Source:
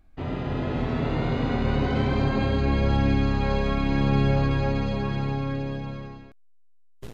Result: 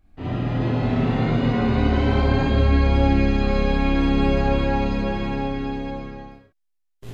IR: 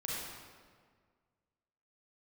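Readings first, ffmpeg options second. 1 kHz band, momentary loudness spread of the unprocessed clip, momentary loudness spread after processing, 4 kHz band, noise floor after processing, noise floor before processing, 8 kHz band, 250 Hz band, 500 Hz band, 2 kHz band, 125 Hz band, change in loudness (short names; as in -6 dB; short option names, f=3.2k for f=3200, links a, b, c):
+4.0 dB, 9 LU, 10 LU, +3.5 dB, -71 dBFS, -52 dBFS, n/a, +4.5 dB, +4.0 dB, +3.5 dB, +2.5 dB, +4.0 dB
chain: -filter_complex "[1:a]atrim=start_sample=2205,afade=t=out:st=0.38:d=0.01,atrim=end_sample=17199,asetrate=70560,aresample=44100[a];[0:a][a]afir=irnorm=-1:irlink=0,volume=5dB"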